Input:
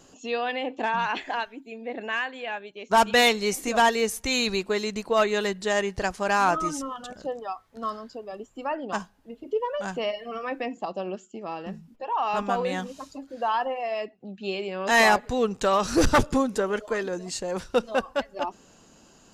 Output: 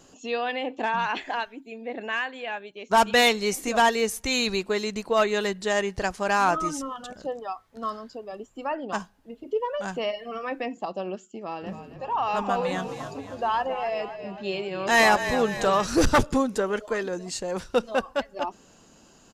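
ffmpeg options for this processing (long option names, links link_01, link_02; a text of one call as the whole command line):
ffmpeg -i in.wav -filter_complex "[0:a]asplit=3[link_01][link_02][link_03];[link_01]afade=type=out:start_time=11.61:duration=0.02[link_04];[link_02]asplit=7[link_05][link_06][link_07][link_08][link_09][link_10][link_11];[link_06]adelay=268,afreqshift=-39,volume=-10.5dB[link_12];[link_07]adelay=536,afreqshift=-78,volume=-15.5dB[link_13];[link_08]adelay=804,afreqshift=-117,volume=-20.6dB[link_14];[link_09]adelay=1072,afreqshift=-156,volume=-25.6dB[link_15];[link_10]adelay=1340,afreqshift=-195,volume=-30.6dB[link_16];[link_11]adelay=1608,afreqshift=-234,volume=-35.7dB[link_17];[link_05][link_12][link_13][link_14][link_15][link_16][link_17]amix=inputs=7:normalize=0,afade=type=in:start_time=11.61:duration=0.02,afade=type=out:start_time=15.84:duration=0.02[link_18];[link_03]afade=type=in:start_time=15.84:duration=0.02[link_19];[link_04][link_18][link_19]amix=inputs=3:normalize=0" out.wav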